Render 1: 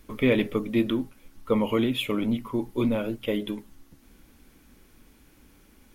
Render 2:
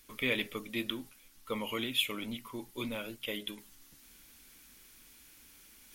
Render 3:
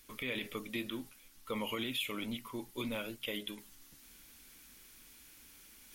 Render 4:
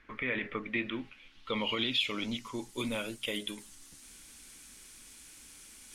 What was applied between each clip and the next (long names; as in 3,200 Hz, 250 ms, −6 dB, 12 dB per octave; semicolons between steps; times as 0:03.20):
tilt shelving filter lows −9.5 dB, about 1,400 Hz; reversed playback; upward compression, threshold −45 dBFS; reversed playback; level −6 dB
brickwall limiter −26.5 dBFS, peak gain reduction 9.5 dB
low-pass filter sweep 1,800 Hz → 8,700 Hz, 0:00.56–0:02.82; level +3.5 dB